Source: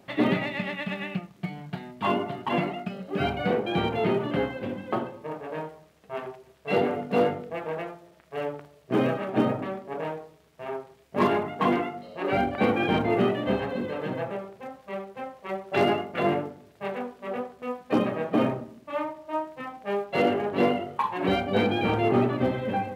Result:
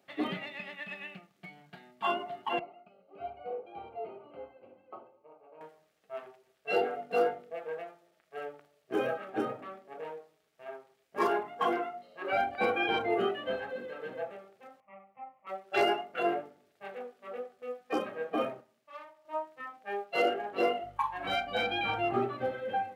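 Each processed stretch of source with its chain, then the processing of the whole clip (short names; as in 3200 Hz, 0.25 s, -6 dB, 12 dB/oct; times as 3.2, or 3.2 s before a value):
2.59–5.61 running mean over 25 samples + bell 190 Hz -14.5 dB 2.1 oct
14.8–15.47 steep low-pass 2300 Hz + fixed phaser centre 1600 Hz, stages 6
18.61–19.25 tube stage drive 26 dB, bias 0.65 + HPF 70 Hz + bell 270 Hz -11 dB 1.3 oct
20.83–22.15 bell 420 Hz -14.5 dB 0.26 oct + buzz 50 Hz, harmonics 3, -38 dBFS -3 dB/oct
whole clip: HPF 550 Hz 6 dB/oct; notch 990 Hz, Q 6.8; spectral noise reduction 10 dB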